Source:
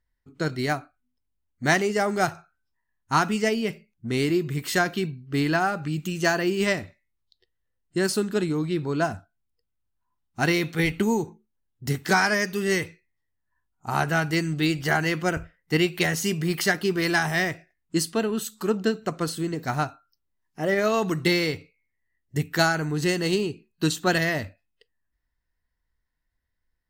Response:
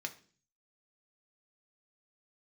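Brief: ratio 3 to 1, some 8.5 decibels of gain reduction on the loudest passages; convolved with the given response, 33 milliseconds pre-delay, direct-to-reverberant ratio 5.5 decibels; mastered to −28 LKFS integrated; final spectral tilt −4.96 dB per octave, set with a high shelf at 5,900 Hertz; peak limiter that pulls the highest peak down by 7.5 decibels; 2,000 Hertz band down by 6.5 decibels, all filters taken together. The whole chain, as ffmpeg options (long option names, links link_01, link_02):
-filter_complex "[0:a]equalizer=frequency=2000:width_type=o:gain=-9,highshelf=frequency=5900:gain=4,acompressor=threshold=-30dB:ratio=3,alimiter=level_in=1dB:limit=-24dB:level=0:latency=1,volume=-1dB,asplit=2[link_01][link_02];[1:a]atrim=start_sample=2205,adelay=33[link_03];[link_02][link_03]afir=irnorm=-1:irlink=0,volume=-5.5dB[link_04];[link_01][link_04]amix=inputs=2:normalize=0,volume=6.5dB"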